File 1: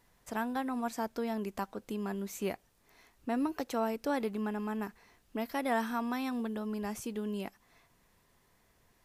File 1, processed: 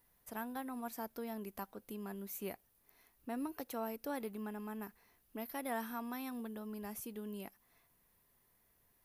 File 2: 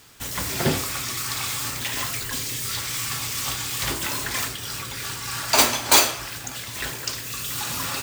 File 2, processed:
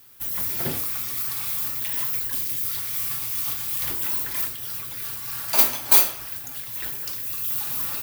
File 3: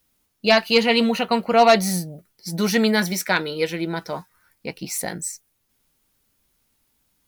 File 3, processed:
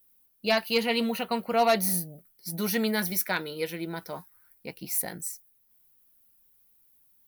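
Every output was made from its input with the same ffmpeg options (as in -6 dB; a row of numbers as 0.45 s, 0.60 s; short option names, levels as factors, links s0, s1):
-af "aexciter=amount=4.6:drive=5.7:freq=10000,volume=0.376"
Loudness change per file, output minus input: -8.0 LU, +1.0 LU, -7.5 LU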